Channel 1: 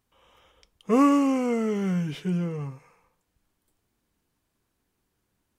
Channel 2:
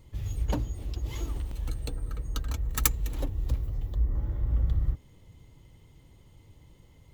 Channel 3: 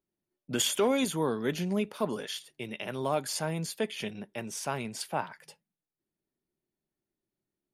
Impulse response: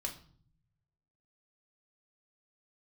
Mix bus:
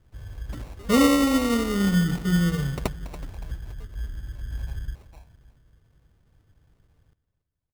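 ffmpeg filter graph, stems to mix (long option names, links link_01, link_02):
-filter_complex "[0:a]volume=3dB,asplit=3[link_01][link_02][link_03];[link_02]volume=-4dB[link_04];[link_03]volume=-14dB[link_05];[1:a]highshelf=frequency=6400:gain=6.5,volume=-5.5dB,asplit=2[link_06][link_07];[link_07]volume=-17dB[link_08];[2:a]equalizer=frequency=12000:width_type=o:width=0.28:gain=6.5,volume=-17dB[link_09];[3:a]atrim=start_sample=2205[link_10];[link_04][link_10]afir=irnorm=-1:irlink=0[link_11];[link_05][link_08]amix=inputs=2:normalize=0,aecho=0:1:283|566|849|1132|1415|1698|1981:1|0.48|0.23|0.111|0.0531|0.0255|0.0122[link_12];[link_01][link_06][link_09][link_11][link_12]amix=inputs=5:normalize=0,equalizer=frequency=1000:width=0.31:gain=-7.5,acrusher=samples=27:mix=1:aa=0.000001"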